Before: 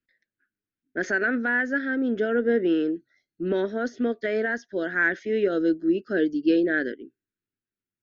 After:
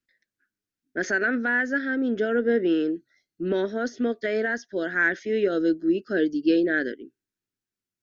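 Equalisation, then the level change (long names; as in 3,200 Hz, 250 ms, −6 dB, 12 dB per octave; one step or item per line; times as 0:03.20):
parametric band 5,700 Hz +5.5 dB 1.1 octaves
0.0 dB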